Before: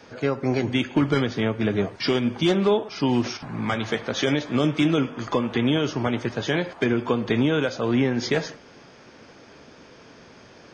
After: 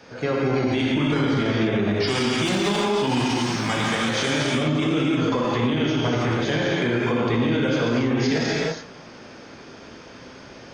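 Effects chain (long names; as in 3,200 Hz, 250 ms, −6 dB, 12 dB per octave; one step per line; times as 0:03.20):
0:02.06–0:04.35: spectral envelope flattened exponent 0.6
reverb whose tail is shaped and stops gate 360 ms flat, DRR −4.5 dB
brickwall limiter −13.5 dBFS, peak gain reduction 10 dB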